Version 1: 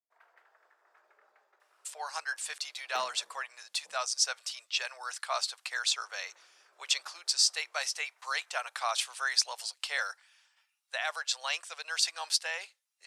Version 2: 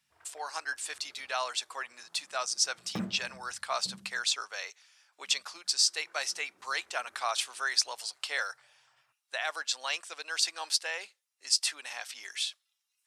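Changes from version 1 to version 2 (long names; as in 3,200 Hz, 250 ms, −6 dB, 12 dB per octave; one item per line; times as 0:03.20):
speech: entry −1.60 s
master: remove high-pass filter 510 Hz 24 dB per octave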